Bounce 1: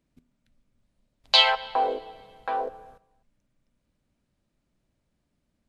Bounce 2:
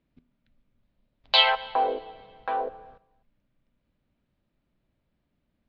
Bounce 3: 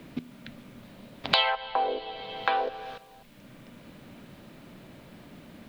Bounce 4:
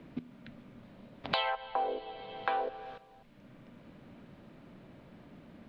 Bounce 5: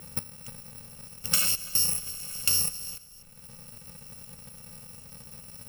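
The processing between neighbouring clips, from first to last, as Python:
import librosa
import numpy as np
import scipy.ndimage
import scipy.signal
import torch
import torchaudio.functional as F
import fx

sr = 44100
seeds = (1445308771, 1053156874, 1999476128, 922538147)

y1 = scipy.signal.sosfilt(scipy.signal.butter(4, 4000.0, 'lowpass', fs=sr, output='sos'), x)
y2 = fx.band_squash(y1, sr, depth_pct=100)
y3 = fx.lowpass(y2, sr, hz=1800.0, slope=6)
y3 = y3 * 10.0 ** (-4.5 / 20.0)
y4 = fx.bit_reversed(y3, sr, seeds[0], block=128)
y4 = y4 * 10.0 ** (7.5 / 20.0)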